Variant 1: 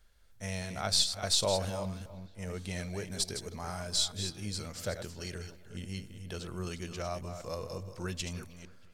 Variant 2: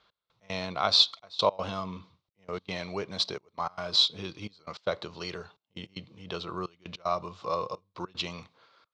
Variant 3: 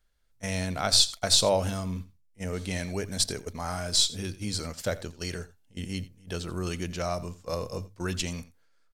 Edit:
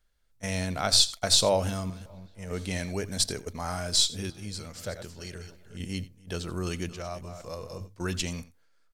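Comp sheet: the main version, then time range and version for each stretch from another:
3
1.9–2.51 from 1
4.3–5.8 from 1
6.89–7.81 from 1
not used: 2

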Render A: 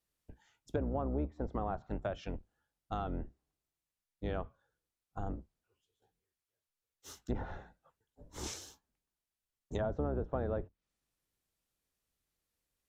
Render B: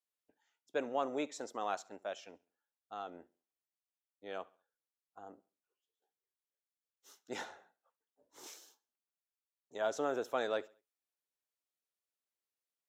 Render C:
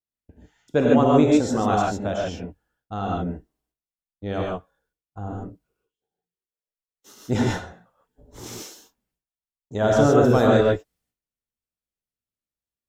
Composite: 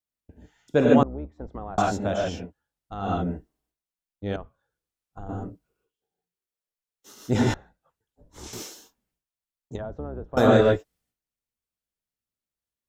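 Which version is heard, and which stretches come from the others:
C
1.03–1.78 from A
2.46–3.01 from A, crossfade 0.16 s
4.36–5.29 from A
7.54–8.53 from A
9.76–10.37 from A
not used: B

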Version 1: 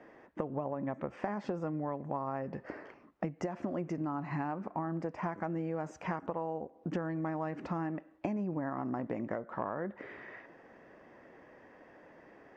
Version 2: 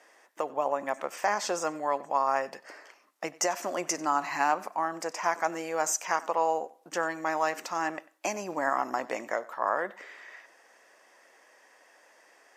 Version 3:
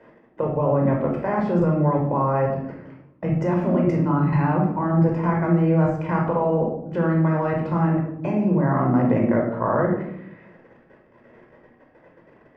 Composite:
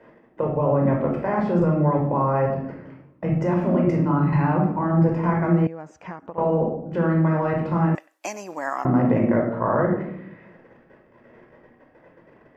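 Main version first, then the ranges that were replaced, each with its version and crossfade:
3
5.67–6.38 from 1
7.95–8.85 from 2

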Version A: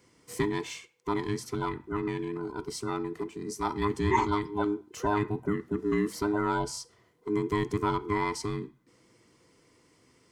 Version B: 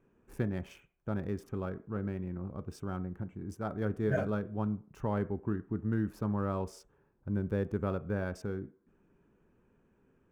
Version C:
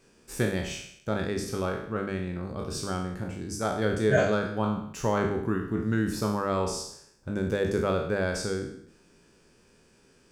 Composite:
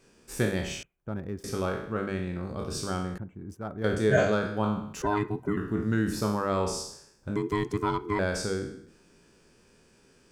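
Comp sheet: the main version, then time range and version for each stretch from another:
C
0.83–1.44 from B
3.18–3.84 from B
5.02–5.57 from A
7.36–8.19 from A

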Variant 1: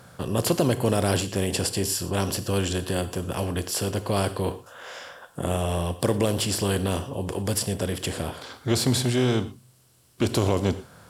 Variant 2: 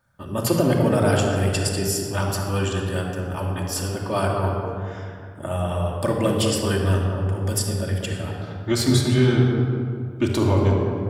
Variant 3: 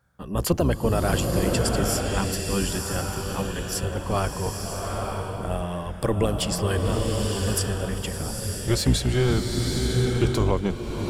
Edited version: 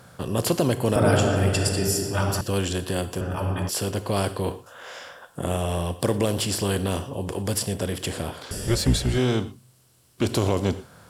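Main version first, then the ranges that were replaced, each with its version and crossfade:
1
0.96–2.41 from 2
3.21–3.69 from 2
8.51–9.18 from 3

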